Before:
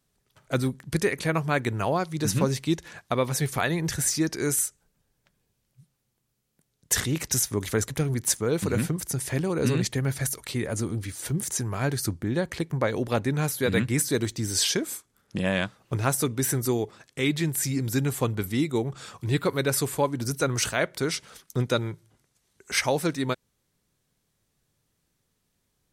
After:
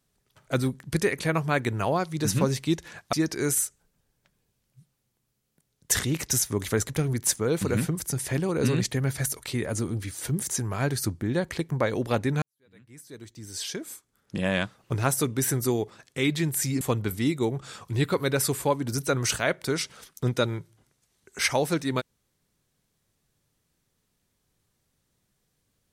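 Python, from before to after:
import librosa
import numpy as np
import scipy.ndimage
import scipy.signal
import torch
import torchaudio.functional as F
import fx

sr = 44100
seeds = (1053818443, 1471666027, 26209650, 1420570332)

y = fx.edit(x, sr, fx.cut(start_s=3.13, length_s=1.01),
    fx.fade_in_span(start_s=13.43, length_s=2.13, curve='qua'),
    fx.cut(start_s=17.82, length_s=0.32), tone=tone)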